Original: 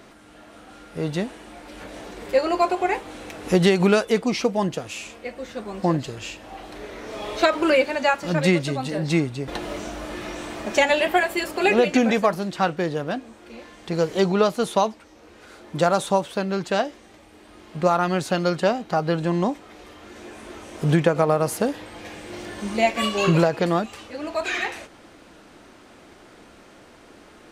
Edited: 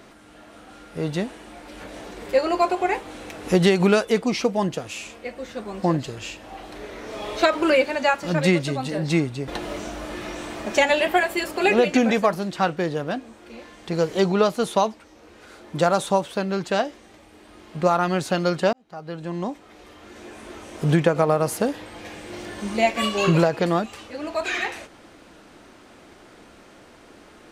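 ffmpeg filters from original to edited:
-filter_complex "[0:a]asplit=2[s0][s1];[s0]atrim=end=18.73,asetpts=PTS-STARTPTS,afade=t=out:st=18.726:d=0.004:c=hsin[s2];[s1]atrim=start=18.73,asetpts=PTS-STARTPTS,afade=t=in:d=2.04:c=qsin[s3];[s2][s3]concat=n=2:v=0:a=1"

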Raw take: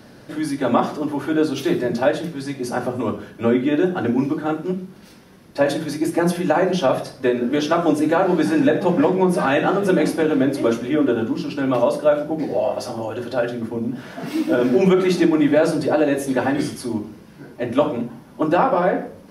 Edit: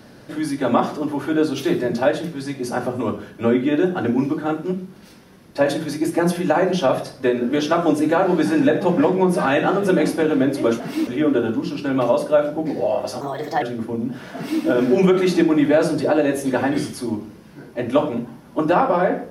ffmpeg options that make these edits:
-filter_complex "[0:a]asplit=5[s0][s1][s2][s3][s4];[s0]atrim=end=10.802[s5];[s1]atrim=start=14.178:end=14.452[s6];[s2]atrim=start=10.798:end=12.944[s7];[s3]atrim=start=12.94:end=13.45,asetpts=PTS-STARTPTS,asetrate=54684,aresample=44100[s8];[s4]atrim=start=13.446[s9];[s5][s6]acrossfade=d=0.004:c1=hsin:c2=hsin[s10];[s10][s7]acrossfade=d=0.004:c1=hsin:c2=hsin[s11];[s11][s8]acrossfade=d=0.004:c1=hsin:c2=hsin[s12];[s12][s9]acrossfade=d=0.004:c1=hsin:c2=hsin"

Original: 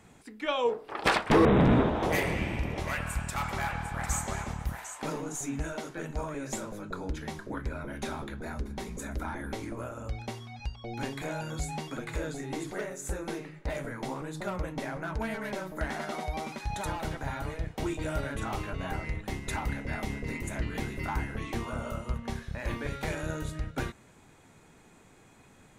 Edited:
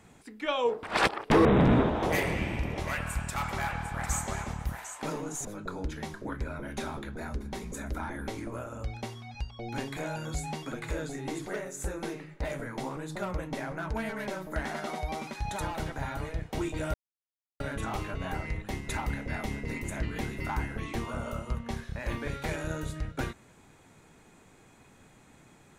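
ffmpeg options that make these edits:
-filter_complex "[0:a]asplit=5[s0][s1][s2][s3][s4];[s0]atrim=end=0.832[s5];[s1]atrim=start=0.828:end=1.302,asetpts=PTS-STARTPTS,areverse[s6];[s2]atrim=start=1.298:end=5.452[s7];[s3]atrim=start=6.698:end=18.19,asetpts=PTS-STARTPTS,afade=t=out:st=11.488:d=0.004:c=hsin,apad=pad_dur=0.66[s8];[s4]atrim=start=18.19,asetpts=PTS-STARTPTS,afade=t=in:d=0.004:c=hsin[s9];[s5][s6]acrossfade=d=0.004:c1=hsin:c2=hsin[s10];[s10][s7]acrossfade=d=0.004:c1=hsin:c2=hsin[s11];[s8][s9]concat=n=2:v=0:a=1[s12];[s11][s12]acrossfade=d=0.004:c1=hsin:c2=hsin"

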